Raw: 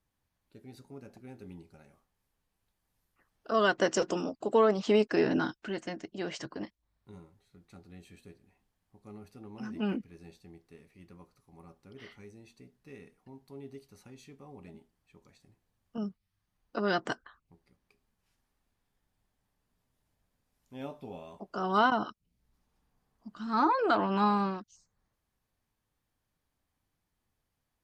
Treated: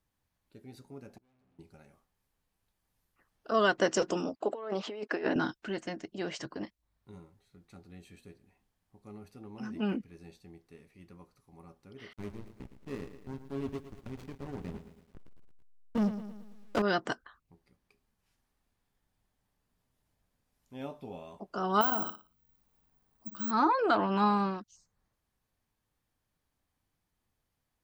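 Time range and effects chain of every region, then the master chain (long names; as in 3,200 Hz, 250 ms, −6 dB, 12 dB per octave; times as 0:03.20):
0:01.18–0:01.59: tuned comb filter 64 Hz, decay 1.6 s, mix 90% + tube saturation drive 71 dB, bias 0.6
0:04.36–0:05.36: compressor whose output falls as the input rises −29 dBFS, ratio −0.5 + high-pass filter 130 Hz + bass and treble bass −13 dB, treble −11 dB
0:12.13–0:16.82: leveller curve on the samples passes 3 + slack as between gear wheels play −33 dBFS + feedback echo at a low word length 112 ms, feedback 55%, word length 10 bits, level −11 dB
0:21.81–0:23.51: bad sample-rate conversion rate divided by 2×, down none, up zero stuff + downward compressor 2 to 1, threshold −29 dBFS + flutter between parallel walls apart 10 metres, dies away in 0.34 s
whole clip: no processing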